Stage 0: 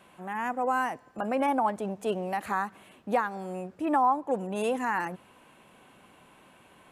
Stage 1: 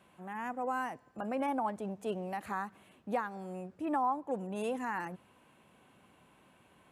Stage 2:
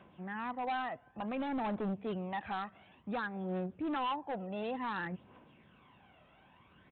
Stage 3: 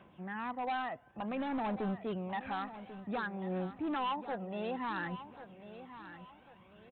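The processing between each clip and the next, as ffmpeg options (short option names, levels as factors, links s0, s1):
-af "highpass=48,lowshelf=f=200:g=6.5,volume=0.398"
-af "aphaser=in_gain=1:out_gain=1:delay=1.6:decay=0.56:speed=0.56:type=triangular,aresample=8000,asoftclip=type=hard:threshold=0.0251,aresample=44100"
-af "aecho=1:1:1092|2184|3276:0.224|0.0784|0.0274"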